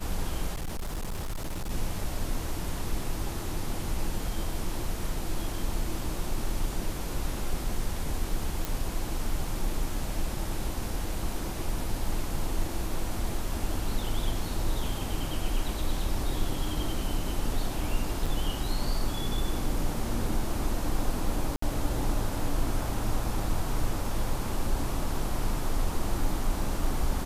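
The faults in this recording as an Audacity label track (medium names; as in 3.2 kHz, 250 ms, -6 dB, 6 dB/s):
0.530000	1.710000	clipped -29 dBFS
8.650000	8.650000	pop
18.260000	18.270000	dropout 5.4 ms
21.560000	21.620000	dropout 64 ms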